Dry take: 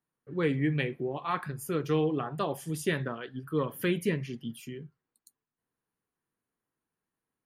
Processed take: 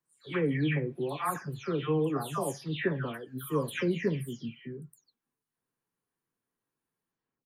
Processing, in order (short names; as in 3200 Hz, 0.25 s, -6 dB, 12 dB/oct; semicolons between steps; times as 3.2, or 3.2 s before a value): spectral delay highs early, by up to 0.339 s